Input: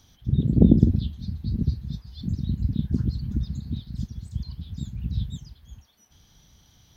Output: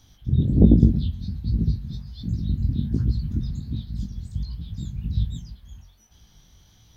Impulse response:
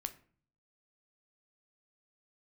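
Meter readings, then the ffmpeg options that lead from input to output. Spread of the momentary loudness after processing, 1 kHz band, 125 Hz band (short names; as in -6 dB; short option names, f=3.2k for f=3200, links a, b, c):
17 LU, n/a, +2.0 dB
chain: -af "flanger=delay=17.5:depth=5.5:speed=1.3,lowshelf=f=62:g=8.5,bandreject=f=45.05:t=h:w=4,bandreject=f=90.1:t=h:w=4,bandreject=f=135.15:t=h:w=4,bandreject=f=180.2:t=h:w=4,bandreject=f=225.25:t=h:w=4,volume=3.5dB"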